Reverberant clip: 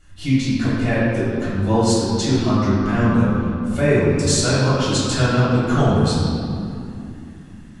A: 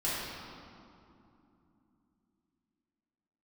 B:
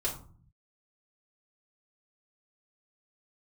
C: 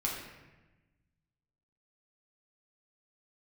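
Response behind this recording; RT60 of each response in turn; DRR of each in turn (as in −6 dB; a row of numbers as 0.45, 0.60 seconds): A; 2.8, 0.45, 1.1 seconds; −10.0, −7.0, −3.5 decibels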